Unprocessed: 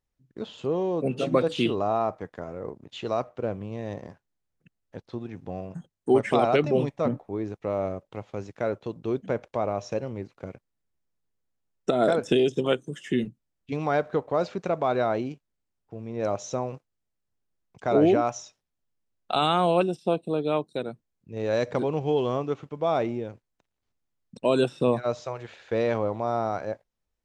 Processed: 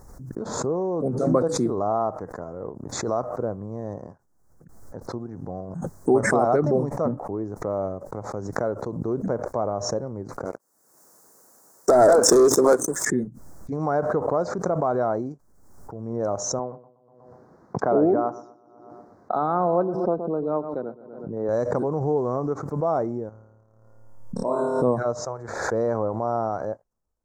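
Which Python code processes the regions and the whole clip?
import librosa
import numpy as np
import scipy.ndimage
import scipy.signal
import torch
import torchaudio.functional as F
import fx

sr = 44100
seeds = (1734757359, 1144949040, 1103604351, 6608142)

y = fx.chain(x, sr, fx.highpass(hz=340.0, slope=12),
    fx.high_shelf(hz=3400.0, db=10.0),
    fx.leveller(passes=3), at=(10.45, 13.05))
y = fx.chain(y, sr, fx.highpass(hz=160.0, slope=12),
    fx.air_absorb(metres=270.0),
    fx.echo_filtered(ms=122, feedback_pct=35, hz=4800.0, wet_db=-16), at=(16.59, 21.49))
y = fx.chain(y, sr, fx.peak_eq(hz=970.0, db=4.5, octaves=1.1),
    fx.comb_fb(f0_hz=57.0, decay_s=1.6, harmonics='all', damping=0.0, mix_pct=70),
    fx.room_flutter(wall_m=4.7, rt60_s=1.3), at=(23.29, 24.82))
y = scipy.signal.sosfilt(scipy.signal.cheby1(2, 1.0, [1200.0, 6700.0], 'bandstop', fs=sr, output='sos'), y)
y = fx.high_shelf(y, sr, hz=6600.0, db=-6.0)
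y = fx.pre_swell(y, sr, db_per_s=46.0)
y = y * 10.0 ** (1.5 / 20.0)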